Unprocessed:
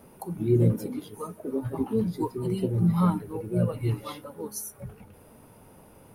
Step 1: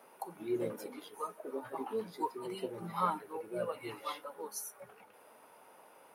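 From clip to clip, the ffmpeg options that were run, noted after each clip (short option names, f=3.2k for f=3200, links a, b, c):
-af "highpass=710,highshelf=f=4k:g=-9,volume=1.5dB"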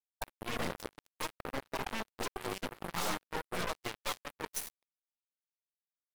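-af "acrusher=bits=5:mix=0:aa=0.5,afftfilt=real='re*lt(hypot(re,im),0.0891)':imag='im*lt(hypot(re,im),0.0891)':win_size=1024:overlap=0.75,aeval=exprs='0.0447*(cos(1*acos(clip(val(0)/0.0447,-1,1)))-cos(1*PI/2))+0.00891*(cos(8*acos(clip(val(0)/0.0447,-1,1)))-cos(8*PI/2))':c=same,volume=3.5dB"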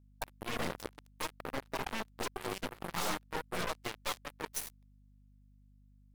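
-af "aeval=exprs='val(0)+0.000891*(sin(2*PI*50*n/s)+sin(2*PI*2*50*n/s)/2+sin(2*PI*3*50*n/s)/3+sin(2*PI*4*50*n/s)/4+sin(2*PI*5*50*n/s)/5)':c=same"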